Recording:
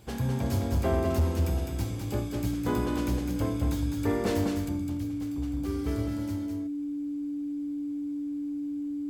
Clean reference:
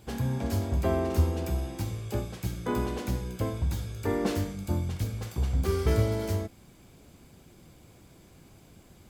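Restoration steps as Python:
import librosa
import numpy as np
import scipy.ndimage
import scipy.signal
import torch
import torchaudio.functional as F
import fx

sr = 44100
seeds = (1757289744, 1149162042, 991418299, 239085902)

y = fx.fix_declip(x, sr, threshold_db=-19.5)
y = fx.notch(y, sr, hz=290.0, q=30.0)
y = fx.fix_echo_inverse(y, sr, delay_ms=206, level_db=-5.0)
y = fx.gain(y, sr, db=fx.steps((0.0, 0.0), (4.69, 8.5)))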